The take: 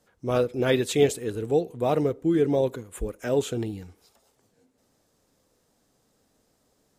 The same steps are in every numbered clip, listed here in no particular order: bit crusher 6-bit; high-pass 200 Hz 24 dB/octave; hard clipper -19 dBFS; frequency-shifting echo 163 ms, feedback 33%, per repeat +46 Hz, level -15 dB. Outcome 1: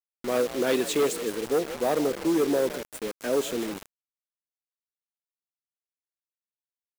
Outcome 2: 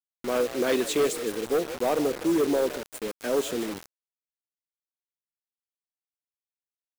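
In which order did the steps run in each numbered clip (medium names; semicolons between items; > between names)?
hard clipper > frequency-shifting echo > high-pass > bit crusher; high-pass > hard clipper > frequency-shifting echo > bit crusher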